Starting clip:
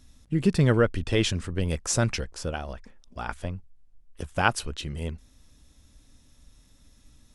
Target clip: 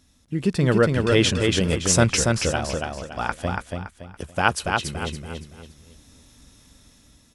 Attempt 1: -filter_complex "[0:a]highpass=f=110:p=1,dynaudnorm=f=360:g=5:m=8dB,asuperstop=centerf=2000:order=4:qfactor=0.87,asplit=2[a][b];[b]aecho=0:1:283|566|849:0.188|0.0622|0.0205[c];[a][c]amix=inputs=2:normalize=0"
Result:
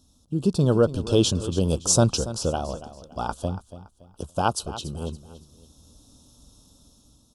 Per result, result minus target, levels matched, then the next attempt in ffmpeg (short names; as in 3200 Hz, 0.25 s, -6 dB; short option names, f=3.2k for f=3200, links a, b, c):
2000 Hz band -13.0 dB; echo-to-direct -11 dB
-filter_complex "[0:a]highpass=f=110:p=1,dynaudnorm=f=360:g=5:m=8dB,asplit=2[a][b];[b]aecho=0:1:283|566|849:0.188|0.0622|0.0205[c];[a][c]amix=inputs=2:normalize=0"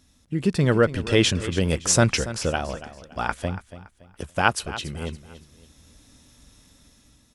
echo-to-direct -11 dB
-filter_complex "[0:a]highpass=f=110:p=1,dynaudnorm=f=360:g=5:m=8dB,asplit=2[a][b];[b]aecho=0:1:283|566|849|1132:0.668|0.221|0.0728|0.024[c];[a][c]amix=inputs=2:normalize=0"